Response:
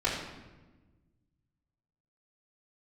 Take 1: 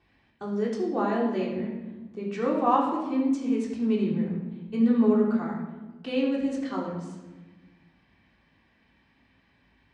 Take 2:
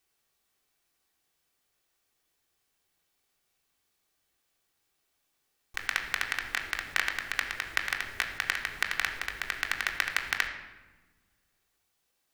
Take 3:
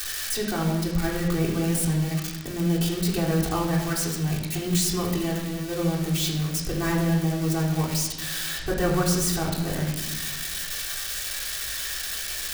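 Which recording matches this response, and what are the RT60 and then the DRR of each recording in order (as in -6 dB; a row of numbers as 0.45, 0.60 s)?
1; 1.2, 1.2, 1.2 s; -11.5, 1.5, -6.5 dB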